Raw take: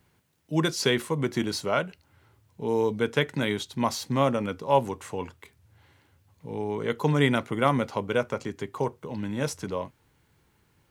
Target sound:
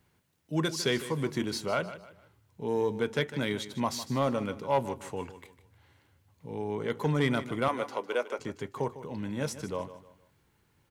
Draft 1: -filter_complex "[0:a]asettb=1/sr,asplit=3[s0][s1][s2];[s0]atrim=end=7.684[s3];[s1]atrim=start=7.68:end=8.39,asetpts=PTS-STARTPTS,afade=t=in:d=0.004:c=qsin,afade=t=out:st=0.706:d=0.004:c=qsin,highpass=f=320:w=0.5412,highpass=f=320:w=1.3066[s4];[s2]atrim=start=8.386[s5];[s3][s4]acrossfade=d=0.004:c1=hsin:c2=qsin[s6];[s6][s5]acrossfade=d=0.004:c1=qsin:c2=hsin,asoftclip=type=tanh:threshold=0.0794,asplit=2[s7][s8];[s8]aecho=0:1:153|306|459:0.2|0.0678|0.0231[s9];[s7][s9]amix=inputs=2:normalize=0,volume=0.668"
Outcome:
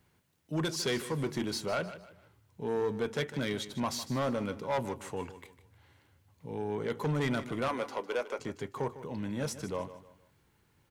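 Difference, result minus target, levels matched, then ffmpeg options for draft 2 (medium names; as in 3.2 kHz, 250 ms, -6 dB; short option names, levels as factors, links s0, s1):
saturation: distortion +10 dB
-filter_complex "[0:a]asettb=1/sr,asplit=3[s0][s1][s2];[s0]atrim=end=7.684[s3];[s1]atrim=start=7.68:end=8.39,asetpts=PTS-STARTPTS,afade=t=in:d=0.004:c=qsin,afade=t=out:st=0.706:d=0.004:c=qsin,highpass=f=320:w=0.5412,highpass=f=320:w=1.3066[s4];[s2]atrim=start=8.386[s5];[s3][s4]acrossfade=d=0.004:c1=hsin:c2=qsin[s6];[s6][s5]acrossfade=d=0.004:c1=qsin:c2=hsin,asoftclip=type=tanh:threshold=0.237,asplit=2[s7][s8];[s8]aecho=0:1:153|306|459:0.2|0.0678|0.0231[s9];[s7][s9]amix=inputs=2:normalize=0,volume=0.668"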